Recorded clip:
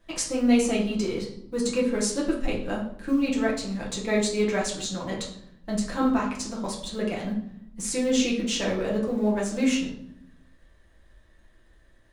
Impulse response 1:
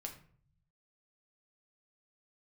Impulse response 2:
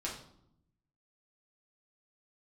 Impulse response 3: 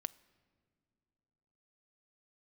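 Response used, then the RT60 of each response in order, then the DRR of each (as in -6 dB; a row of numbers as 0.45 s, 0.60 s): 2; 0.50 s, 0.75 s, no single decay rate; 2.0 dB, -4.5 dB, 17.0 dB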